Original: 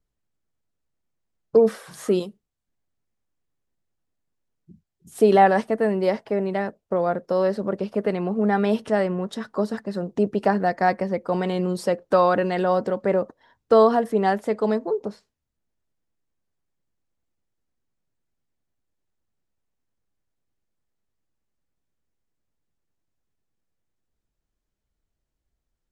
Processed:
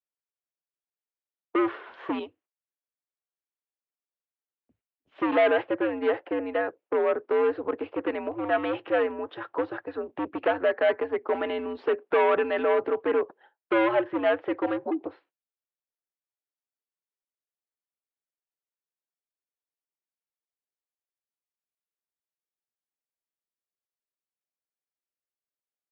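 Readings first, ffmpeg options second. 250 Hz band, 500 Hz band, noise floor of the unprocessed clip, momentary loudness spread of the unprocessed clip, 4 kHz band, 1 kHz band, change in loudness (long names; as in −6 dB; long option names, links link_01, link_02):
−6.0 dB, −4.0 dB, −82 dBFS, 10 LU, −2.5 dB, −7.0 dB, −4.5 dB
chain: -af "volume=18dB,asoftclip=hard,volume=-18dB,agate=range=-15dB:threshold=-53dB:ratio=16:detection=peak,highpass=frequency=490:width_type=q:width=0.5412,highpass=frequency=490:width_type=q:width=1.307,lowpass=frequency=3100:width_type=q:width=0.5176,lowpass=frequency=3100:width_type=q:width=0.7071,lowpass=frequency=3100:width_type=q:width=1.932,afreqshift=-110,volume=1.5dB"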